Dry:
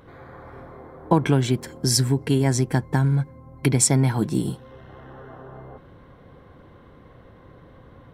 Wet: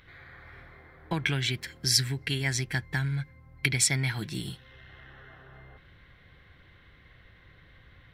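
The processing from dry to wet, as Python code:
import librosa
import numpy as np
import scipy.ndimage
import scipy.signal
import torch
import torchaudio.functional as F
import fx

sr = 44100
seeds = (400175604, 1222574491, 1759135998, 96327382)

y = fx.graphic_eq_10(x, sr, hz=(125, 250, 500, 1000, 2000, 4000, 8000), db=(-4, -11, -10, -11, 10, 6, -5))
y = y * librosa.db_to_amplitude(-2.5)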